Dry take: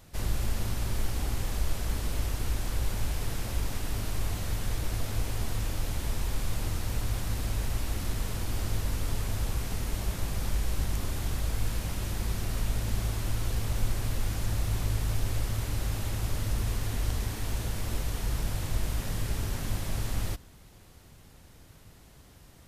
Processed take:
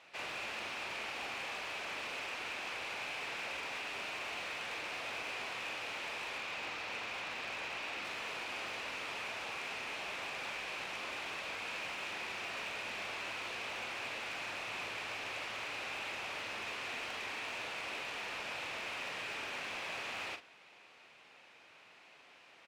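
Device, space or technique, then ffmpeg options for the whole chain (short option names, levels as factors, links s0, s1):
megaphone: -filter_complex "[0:a]asettb=1/sr,asplit=3[s0][s1][s2];[s0]atrim=end=6.384[s3];[s1]atrim=start=6.38:end=8.04,asetpts=PTS-STARTPTS,afade=t=in:d=0.004:c=qsin,afade=t=out:st=1.656:d=0.004:c=qsin,lowpass=6800[s4];[s2]atrim=start=8.036[s5];[s3][s4]acrossfade=d=0.004:c1=hsin:c2=qsin[s6];[s6][s5]acrossfade=d=0.004:c1=qsin:c2=hsin,highpass=640,lowpass=3500,equalizer=f=2500:t=o:w=0.39:g=10.5,asoftclip=type=hard:threshold=0.0133,asplit=2[s7][s8];[s8]adelay=43,volume=0.355[s9];[s7][s9]amix=inputs=2:normalize=0,volume=1.12"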